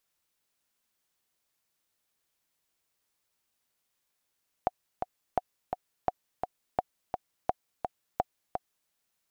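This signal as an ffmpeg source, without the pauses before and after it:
ffmpeg -f lavfi -i "aevalsrc='pow(10,(-12-5.5*gte(mod(t,2*60/170),60/170))/20)*sin(2*PI*734*mod(t,60/170))*exp(-6.91*mod(t,60/170)/0.03)':duration=4.23:sample_rate=44100" out.wav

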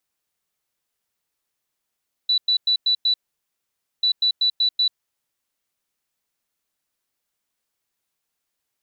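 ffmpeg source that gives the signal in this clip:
ffmpeg -f lavfi -i "aevalsrc='0.168*sin(2*PI*3960*t)*clip(min(mod(mod(t,1.74),0.19),0.09-mod(mod(t,1.74),0.19))/0.005,0,1)*lt(mod(t,1.74),0.95)':duration=3.48:sample_rate=44100" out.wav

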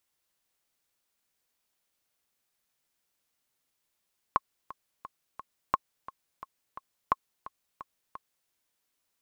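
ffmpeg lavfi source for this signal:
ffmpeg -f lavfi -i "aevalsrc='pow(10,(-9.5-18*gte(mod(t,4*60/174),60/174))/20)*sin(2*PI*1080*mod(t,60/174))*exp(-6.91*mod(t,60/174)/0.03)':duration=4.13:sample_rate=44100" out.wav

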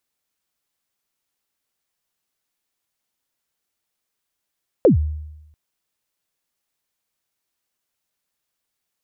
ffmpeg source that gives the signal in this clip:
ffmpeg -f lavfi -i "aevalsrc='0.447*pow(10,-3*t/0.95)*sin(2*PI*(590*0.12/log(76/590)*(exp(log(76/590)*min(t,0.12)/0.12)-1)+76*max(t-0.12,0)))':duration=0.69:sample_rate=44100" out.wav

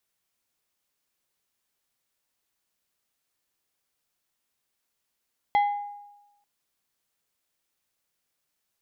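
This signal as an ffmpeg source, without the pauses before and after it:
ffmpeg -f lavfi -i "aevalsrc='0.15*pow(10,-3*t/1.02)*sin(2*PI*819*t)+0.0422*pow(10,-3*t/0.537)*sin(2*PI*2047.5*t)+0.0119*pow(10,-3*t/0.387)*sin(2*PI*3276*t)+0.00335*pow(10,-3*t/0.331)*sin(2*PI*4095*t)+0.000944*pow(10,-3*t/0.275)*sin(2*PI*5323.5*t)':duration=0.89:sample_rate=44100" out.wav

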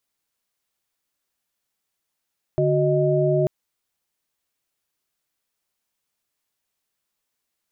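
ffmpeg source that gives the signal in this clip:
ffmpeg -f lavfi -i "aevalsrc='0.0891*(sin(2*PI*146.83*t)+sin(2*PI*369.99*t)+sin(2*PI*622.25*t))':duration=0.89:sample_rate=44100" out.wav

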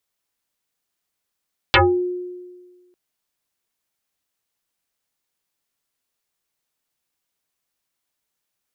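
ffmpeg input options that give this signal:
ffmpeg -f lavfi -i "aevalsrc='0.376*pow(10,-3*t/1.52)*sin(2*PI*359*t+9.5*pow(10,-3*t/0.28)*sin(2*PI*1.25*359*t))':duration=1.2:sample_rate=44100" out.wav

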